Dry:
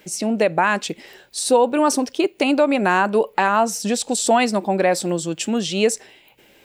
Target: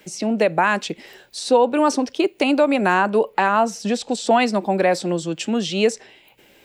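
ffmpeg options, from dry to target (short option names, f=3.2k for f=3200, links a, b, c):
-filter_complex "[0:a]asettb=1/sr,asplit=3[a][b][c];[a]atrim=end=2.944[d];[b]atrim=start=2.94:end=4.33,asetpts=PTS-STARTPTS,afade=t=in:d=0.004:c=qsin,afade=t=out:st=1.386:d=0.004:c=qsin,highshelf=f=5.8k:g=-5.5[e];[c]atrim=start=4.326[f];[d][e]acrossfade=d=0.004:c1=hsin:c2=qsin[g];[g][f]acrossfade=d=0.004:c1=qsin:c2=hsin,acrossover=split=280|510|6400[h][i][j][k];[k]acompressor=threshold=-45dB:ratio=6[l];[h][i][j][l]amix=inputs=4:normalize=0"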